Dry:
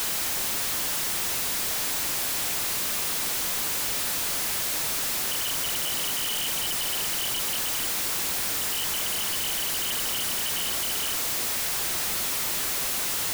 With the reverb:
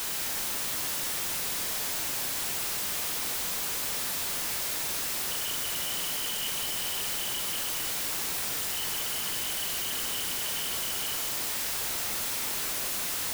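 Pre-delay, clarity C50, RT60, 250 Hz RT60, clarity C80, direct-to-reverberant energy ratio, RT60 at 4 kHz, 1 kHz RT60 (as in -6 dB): 5 ms, 4.5 dB, 2.1 s, 2.0 s, 6.0 dB, 3.0 dB, 2.0 s, 2.1 s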